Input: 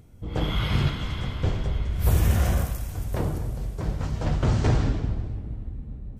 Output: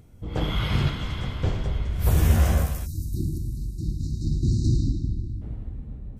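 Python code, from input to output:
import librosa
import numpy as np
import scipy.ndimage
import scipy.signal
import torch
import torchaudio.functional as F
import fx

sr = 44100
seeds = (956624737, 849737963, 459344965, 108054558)

y = fx.spec_erase(x, sr, start_s=2.85, length_s=2.57, low_hz=370.0, high_hz=3700.0)
y = fx.doubler(y, sr, ms=13.0, db=-4, at=(2.16, 3.09))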